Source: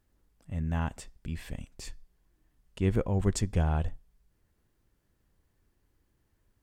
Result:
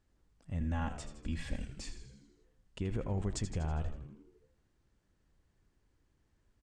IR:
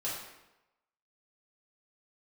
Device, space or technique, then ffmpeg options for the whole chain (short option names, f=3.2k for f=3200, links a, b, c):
stacked limiters: -filter_complex "[0:a]alimiter=limit=-20dB:level=0:latency=1,alimiter=limit=-24dB:level=0:latency=1:release=462,lowpass=f=8.5k:w=0.5412,lowpass=f=8.5k:w=1.3066,asettb=1/sr,asplit=3[a][b][c];[a]atrim=end=0.604[d];[b]atrim=start=0.6:end=1.82,asetpts=PTS-STARTPTS,afade=t=in:d=0.004:c=qsin,afade=t=out:st=1.216:d=0.004:c=qsin,aecho=1:1:3.6:0.91,atrim=end_sample=53802[e];[c]atrim=start=1.816[f];[d][e]acrossfade=d=0.004:c1=hsin:c2=qsin[g];[g][f]acrossfade=d=0.004:c1=qsin:c2=hsin,asplit=8[h][i][j][k][l][m][n][o];[i]adelay=81,afreqshift=-76,volume=-10dB[p];[j]adelay=162,afreqshift=-152,volume=-14.7dB[q];[k]adelay=243,afreqshift=-228,volume=-19.5dB[r];[l]adelay=324,afreqshift=-304,volume=-24.2dB[s];[m]adelay=405,afreqshift=-380,volume=-28.9dB[t];[n]adelay=486,afreqshift=-456,volume=-33.7dB[u];[o]adelay=567,afreqshift=-532,volume=-38.4dB[v];[h][p][q][r][s][t][u][v]amix=inputs=8:normalize=0,volume=-2dB"